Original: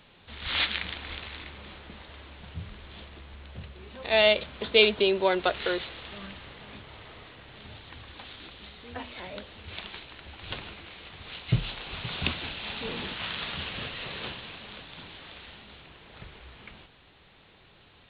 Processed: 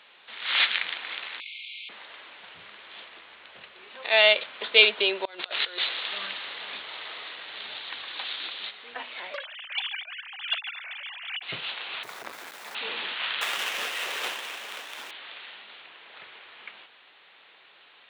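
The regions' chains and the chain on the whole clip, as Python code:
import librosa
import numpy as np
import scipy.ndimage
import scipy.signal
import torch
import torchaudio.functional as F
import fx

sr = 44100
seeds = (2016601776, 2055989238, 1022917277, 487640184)

y = fx.chain(x, sr, fx.brickwall_highpass(low_hz=2100.0),
    fx.env_flatten(amount_pct=100), at=(1.4, 1.89))
y = fx.chain(y, sr, fx.peak_eq(hz=4100.0, db=7.0, octaves=0.72),
    fx.over_compress(threshold_db=-33.0, ratio=-0.5), at=(5.25, 8.71))
y = fx.chain(y, sr, fx.sine_speech(),
    fx.tilt_eq(slope=3.5),
    fx.doppler_dist(depth_ms=0.83), at=(9.34, 11.43))
y = fx.chain(y, sr, fx.median_filter(points=15),
    fx.quant_dither(seeds[0], bits=8, dither='triangular'),
    fx.transformer_sat(knee_hz=960.0), at=(12.03, 12.75))
y = fx.chain(y, sr, fx.halfwave_hold(),
    fx.highpass(hz=250.0, slope=12), at=(13.41, 15.11))
y = scipy.signal.sosfilt(scipy.signal.butter(2, 430.0, 'highpass', fs=sr, output='sos'), y)
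y = fx.peak_eq(y, sr, hz=2100.0, db=9.0, octaves=2.9)
y = y * librosa.db_to_amplitude(-3.5)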